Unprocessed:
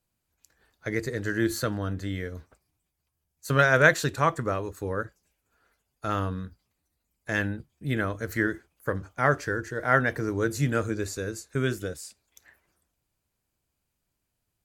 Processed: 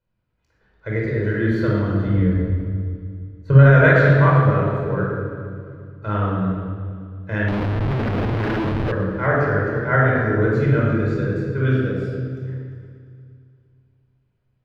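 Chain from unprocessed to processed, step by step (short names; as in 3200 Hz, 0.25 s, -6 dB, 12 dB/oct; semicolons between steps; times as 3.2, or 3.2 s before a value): 2.07–3.66 tilt -3 dB/oct; shoebox room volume 2000 m³, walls mixed, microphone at 4.9 m; 7.48–8.92 Schmitt trigger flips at -24 dBFS; air absorption 340 m; on a send: multi-head echo 0.116 s, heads first and third, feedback 50%, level -17 dB; on the sum: maximiser 0 dB; gain -1 dB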